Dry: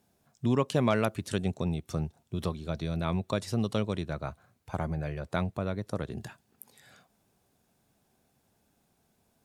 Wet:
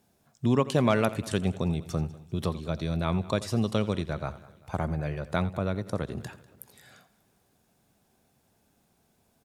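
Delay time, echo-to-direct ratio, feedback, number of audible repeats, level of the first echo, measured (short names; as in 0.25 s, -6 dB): 86 ms, -15.0 dB, no steady repeat, 4, -17.0 dB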